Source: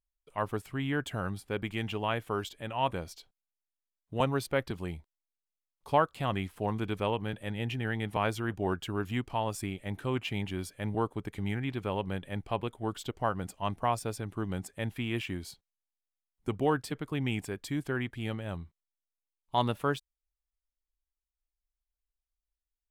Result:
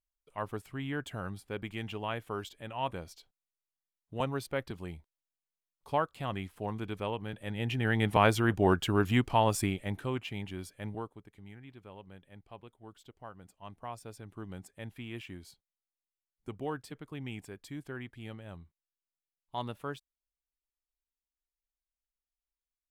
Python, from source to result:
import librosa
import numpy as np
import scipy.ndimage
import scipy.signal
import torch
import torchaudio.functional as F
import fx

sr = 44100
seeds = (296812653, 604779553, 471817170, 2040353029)

y = fx.gain(x, sr, db=fx.line((7.29, -4.5), (8.04, 6.0), (9.61, 6.0), (10.27, -5.0), (10.87, -5.0), (11.27, -17.0), (13.37, -17.0), (14.38, -9.0)))